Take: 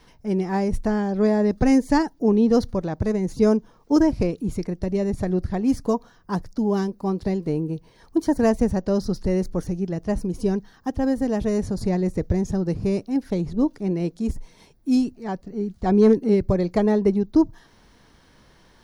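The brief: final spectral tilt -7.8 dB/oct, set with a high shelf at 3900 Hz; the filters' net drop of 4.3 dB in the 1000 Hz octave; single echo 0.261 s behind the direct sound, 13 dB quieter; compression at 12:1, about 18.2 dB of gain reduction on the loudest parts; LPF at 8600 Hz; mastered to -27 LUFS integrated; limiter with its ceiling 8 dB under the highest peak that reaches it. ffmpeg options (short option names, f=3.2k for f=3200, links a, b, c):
-af "lowpass=8.6k,equalizer=f=1k:t=o:g=-6,highshelf=f=3.9k:g=3,acompressor=threshold=-32dB:ratio=12,alimiter=level_in=5dB:limit=-24dB:level=0:latency=1,volume=-5dB,aecho=1:1:261:0.224,volume=11dB"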